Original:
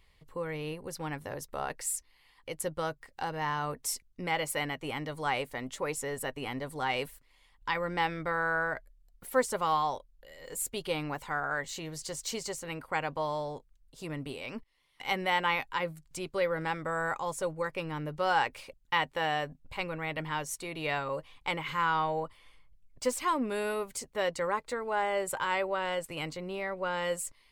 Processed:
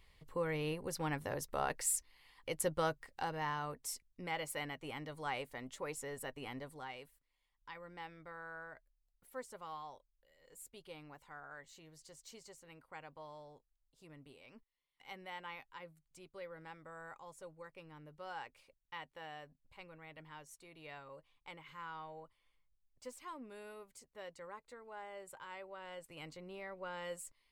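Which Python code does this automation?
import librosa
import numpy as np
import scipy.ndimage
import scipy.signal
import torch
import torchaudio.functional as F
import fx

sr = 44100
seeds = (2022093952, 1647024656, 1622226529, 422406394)

y = fx.gain(x, sr, db=fx.line((2.87, -1.0), (3.79, -9.0), (6.6, -9.0), (7.0, -19.0), (25.67, -19.0), (26.34, -12.0)))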